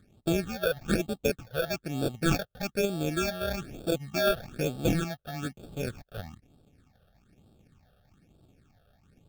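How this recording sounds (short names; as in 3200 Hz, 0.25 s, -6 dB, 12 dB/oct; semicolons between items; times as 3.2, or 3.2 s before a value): aliases and images of a low sample rate 1000 Hz, jitter 0%; phasing stages 8, 1.1 Hz, lowest notch 280–2000 Hz; Vorbis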